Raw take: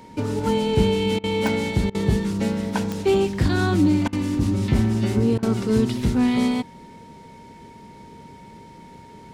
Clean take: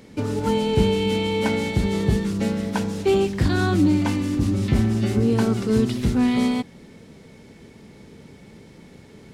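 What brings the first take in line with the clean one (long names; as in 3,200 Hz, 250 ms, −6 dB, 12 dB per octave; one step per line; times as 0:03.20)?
click removal
notch filter 930 Hz, Q 30
repair the gap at 0:01.19/0:01.90/0:04.08/0:05.38, 46 ms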